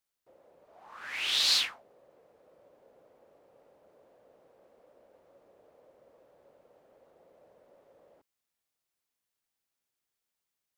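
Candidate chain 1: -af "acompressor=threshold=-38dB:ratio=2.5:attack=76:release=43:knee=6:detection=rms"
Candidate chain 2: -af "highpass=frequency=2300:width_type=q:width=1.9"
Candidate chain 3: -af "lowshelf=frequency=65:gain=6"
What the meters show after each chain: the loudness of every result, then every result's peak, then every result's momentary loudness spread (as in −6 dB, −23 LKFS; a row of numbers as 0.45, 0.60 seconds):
−33.0, −23.5, −27.0 LKFS; −21.0, −10.0, −13.5 dBFS; 16, 11, 16 LU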